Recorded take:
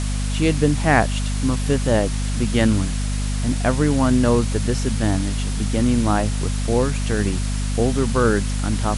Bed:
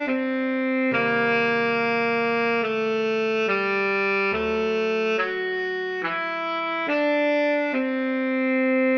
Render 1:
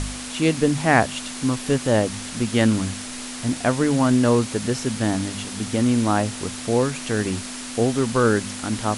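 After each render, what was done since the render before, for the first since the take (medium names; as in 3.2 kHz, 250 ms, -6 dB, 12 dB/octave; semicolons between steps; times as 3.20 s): de-hum 50 Hz, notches 4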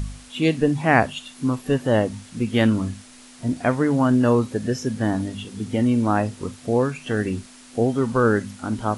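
noise print and reduce 13 dB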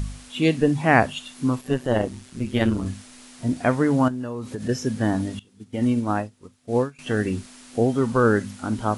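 1.61–2.86 s: AM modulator 130 Hz, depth 55%; 4.08–4.69 s: compression 16:1, threshold -25 dBFS; 5.39–6.99 s: upward expansion 2.5:1, over -30 dBFS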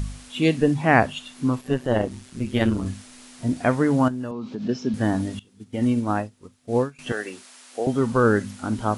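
0.74–2.11 s: treble shelf 5.7 kHz -4.5 dB; 4.31–4.94 s: cabinet simulation 180–4900 Hz, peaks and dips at 210 Hz +7 dB, 520 Hz -6 dB, 1.8 kHz -10 dB; 7.12–7.87 s: high-pass 550 Hz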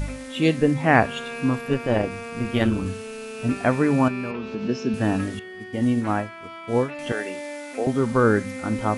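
add bed -12.5 dB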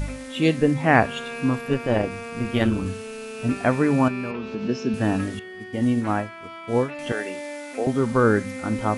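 no audible change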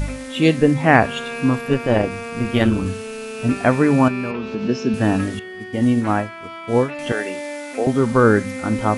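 trim +4.5 dB; peak limiter -1 dBFS, peak gain reduction 2 dB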